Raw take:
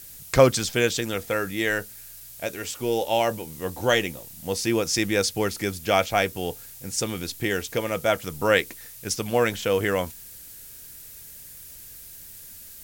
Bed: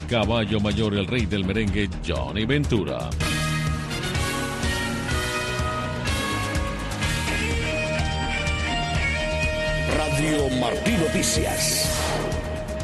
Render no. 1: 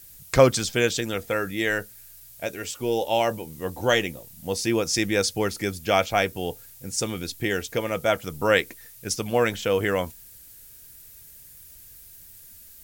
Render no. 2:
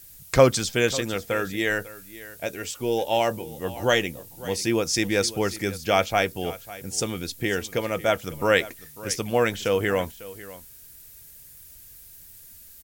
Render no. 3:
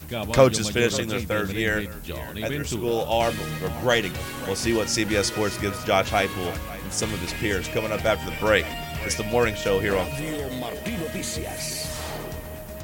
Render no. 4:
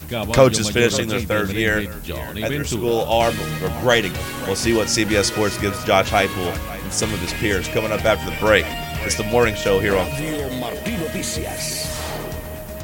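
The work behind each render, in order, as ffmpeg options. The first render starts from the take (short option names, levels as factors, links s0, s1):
-af "afftdn=nr=6:nf=-44"
-af "aecho=1:1:548:0.133"
-filter_complex "[1:a]volume=0.398[s0];[0:a][s0]amix=inputs=2:normalize=0"
-af "volume=1.78,alimiter=limit=0.891:level=0:latency=1"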